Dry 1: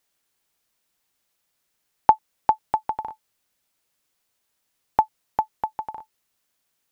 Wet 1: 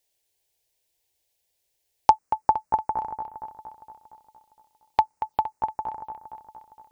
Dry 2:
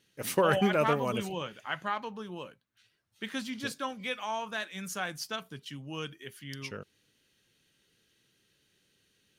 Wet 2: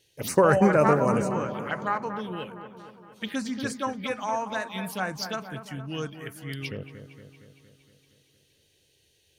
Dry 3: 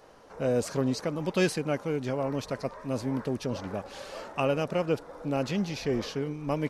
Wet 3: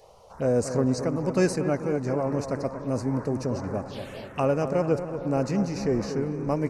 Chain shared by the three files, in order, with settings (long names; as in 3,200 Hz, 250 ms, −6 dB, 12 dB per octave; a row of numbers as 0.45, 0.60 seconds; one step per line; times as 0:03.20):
parametric band 81 Hz +5.5 dB 0.64 octaves
phaser swept by the level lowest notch 210 Hz, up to 3,300 Hz, full sweep at −32 dBFS
on a send: delay with a low-pass on its return 232 ms, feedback 61%, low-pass 2,000 Hz, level −9.5 dB
on the sum: loudness normalisation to −27 LKFS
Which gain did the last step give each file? 0.0, +6.5, +3.5 decibels